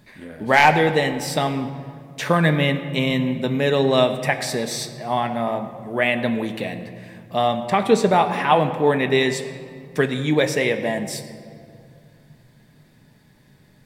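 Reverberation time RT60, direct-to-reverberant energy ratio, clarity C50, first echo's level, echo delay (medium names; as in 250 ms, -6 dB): 2.3 s, 6.0 dB, 10.5 dB, no echo, no echo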